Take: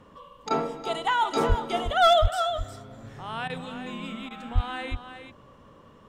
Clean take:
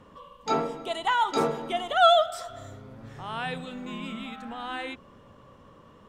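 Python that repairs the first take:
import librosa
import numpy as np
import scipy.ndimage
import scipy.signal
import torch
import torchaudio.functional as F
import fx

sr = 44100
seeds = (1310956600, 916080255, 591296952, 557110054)

y = fx.fix_declip(x, sr, threshold_db=-12.5)
y = fx.fix_deplosive(y, sr, at_s=(1.48, 2.21, 4.54))
y = fx.fix_interpolate(y, sr, at_s=(0.49, 3.48, 4.29), length_ms=15.0)
y = fx.fix_echo_inverse(y, sr, delay_ms=361, level_db=-9.5)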